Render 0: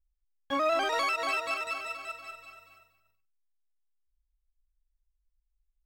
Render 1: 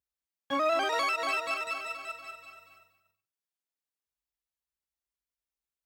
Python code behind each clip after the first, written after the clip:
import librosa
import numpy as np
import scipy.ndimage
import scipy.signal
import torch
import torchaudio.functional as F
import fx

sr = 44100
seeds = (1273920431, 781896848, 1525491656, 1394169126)

y = scipy.signal.sosfilt(scipy.signal.butter(4, 97.0, 'highpass', fs=sr, output='sos'), x)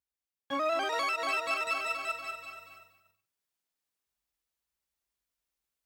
y = fx.rider(x, sr, range_db=5, speed_s=0.5)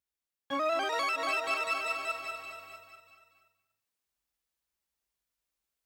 y = x + 10.0 ** (-14.5 / 20.0) * np.pad(x, (int(646 * sr / 1000.0), 0))[:len(x)]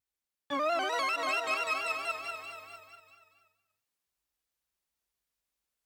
y = fx.vibrato(x, sr, rate_hz=4.5, depth_cents=70.0)